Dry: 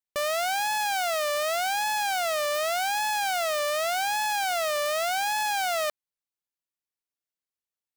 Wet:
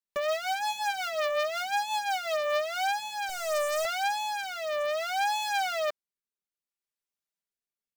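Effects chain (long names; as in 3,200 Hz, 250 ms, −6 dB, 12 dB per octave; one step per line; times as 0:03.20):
0:03.29–0:03.85: high-pass filter 340 Hz 24 dB per octave
in parallel at −8 dB: wrap-around overflow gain 22.5 dB
on the sum: comb filter 5 ms, depth 89%
rotating-speaker cabinet horn 5.5 Hz, later 0.6 Hz, at 0:02.25
level −5.5 dB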